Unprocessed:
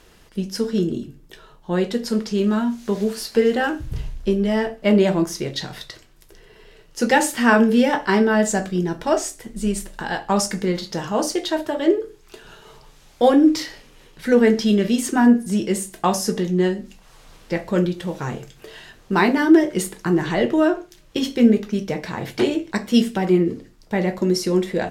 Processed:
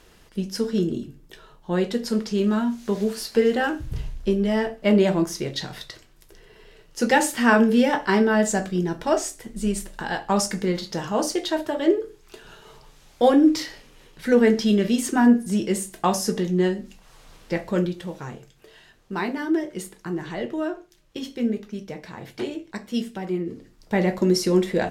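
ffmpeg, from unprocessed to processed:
-af "volume=2.51,afade=t=out:st=17.59:d=0.81:silence=0.398107,afade=t=in:st=23.44:d=0.51:silence=0.316228"

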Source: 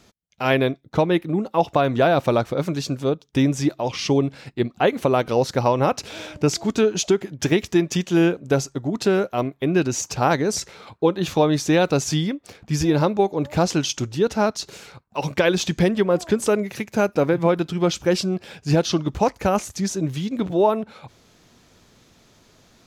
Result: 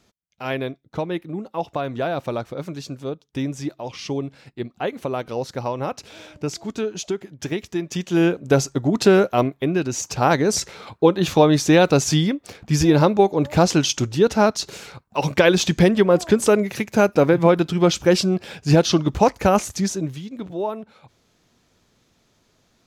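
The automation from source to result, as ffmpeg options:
-af "volume=3.76,afade=t=in:st=7.82:d=0.99:silence=0.251189,afade=t=out:st=9.36:d=0.43:silence=0.398107,afade=t=in:st=9.79:d=0.79:silence=0.473151,afade=t=out:st=19.73:d=0.49:silence=0.266073"

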